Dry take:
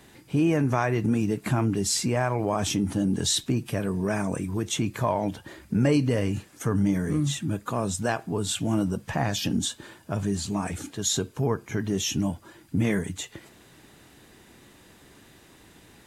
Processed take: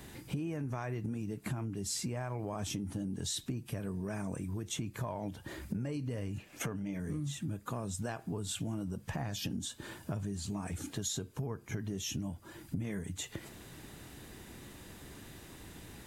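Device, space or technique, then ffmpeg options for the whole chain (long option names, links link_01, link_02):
ASMR close-microphone chain: -filter_complex "[0:a]lowshelf=frequency=160:gain=8,acompressor=threshold=-35dB:ratio=8,highshelf=frequency=11000:gain=7,asettb=1/sr,asplit=3[link_01][link_02][link_03];[link_01]atrim=end=6.384[link_04];[link_02]atrim=start=6.38:end=7,asetpts=PTS-STARTPTS,afade=type=in:duration=0.004:curve=qsin,afade=type=out:start_time=0.616:duration=0.004:curve=qsin,equalizer=frequency=100:width_type=o:width=0.67:gain=-6,equalizer=frequency=630:width_type=o:width=0.67:gain=7,equalizer=frequency=2500:width_type=o:width=0.67:gain=11,equalizer=frequency=10000:width_type=o:width=0.67:gain=-6[link_05];[link_03]atrim=start=6.996[link_06];[link_04][link_05]acrossfade=duration=0.004:curve1=hsin:curve2=qsin[link_07];[link_07][link_06]acrossfade=duration=0.004:curve1=qsin:curve2=hsin"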